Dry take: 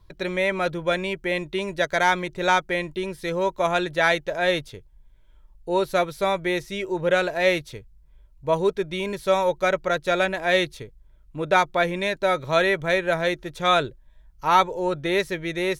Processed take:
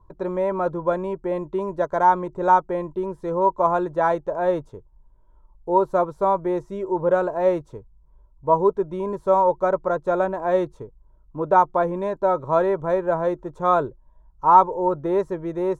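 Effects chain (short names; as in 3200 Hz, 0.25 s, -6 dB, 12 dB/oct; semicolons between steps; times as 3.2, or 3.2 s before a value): EQ curve 140 Hz 0 dB, 420 Hz +4 dB, 710 Hz +2 dB, 1000 Hz +10 dB, 2100 Hz -20 dB, 4600 Hz -22 dB, 7300 Hz -12 dB, 12000 Hz -23 dB; gain -1 dB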